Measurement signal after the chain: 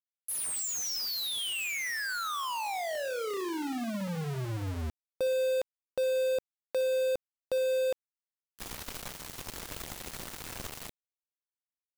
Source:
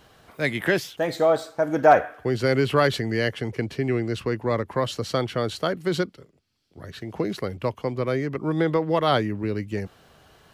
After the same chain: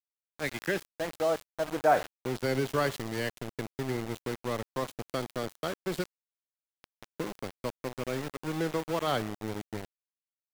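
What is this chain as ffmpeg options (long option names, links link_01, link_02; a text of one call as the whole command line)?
ffmpeg -i in.wav -af "aecho=1:1:61|122|183|244|305:0.141|0.0791|0.0443|0.0248|0.0139,aeval=exprs='val(0)*gte(abs(val(0)),0.0596)':channel_layout=same,volume=-8.5dB" out.wav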